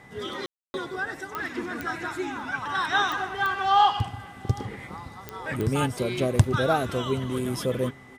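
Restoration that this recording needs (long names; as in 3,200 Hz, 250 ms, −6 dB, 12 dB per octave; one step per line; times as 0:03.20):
click removal
notch filter 2,000 Hz, Q 30
ambience match 0:00.46–0:00.74
echo removal 777 ms −23.5 dB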